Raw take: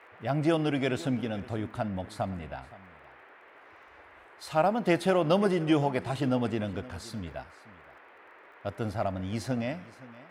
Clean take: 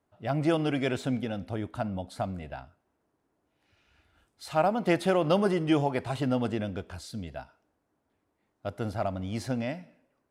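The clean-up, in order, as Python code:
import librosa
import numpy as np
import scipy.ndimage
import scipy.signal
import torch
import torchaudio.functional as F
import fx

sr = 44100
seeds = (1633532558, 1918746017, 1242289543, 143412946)

y = fx.fix_declick_ar(x, sr, threshold=6.5)
y = fx.noise_reduce(y, sr, print_start_s=3.15, print_end_s=3.65, reduce_db=23.0)
y = fx.fix_echo_inverse(y, sr, delay_ms=519, level_db=-19.0)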